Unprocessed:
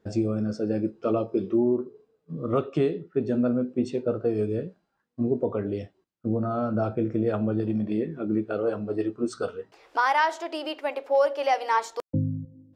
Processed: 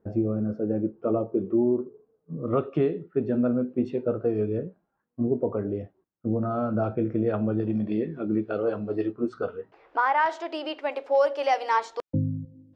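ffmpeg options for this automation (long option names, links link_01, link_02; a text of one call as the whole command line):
ffmpeg -i in.wav -af "asetnsamples=nb_out_samples=441:pad=0,asendcmd='2.48 lowpass f 2400;4.58 lowpass f 1400;6.42 lowpass f 2900;7.73 lowpass f 4700;9.12 lowpass f 2000;10.26 lowpass f 4700;10.92 lowpass f 7200;11.78 lowpass f 4700',lowpass=1100" out.wav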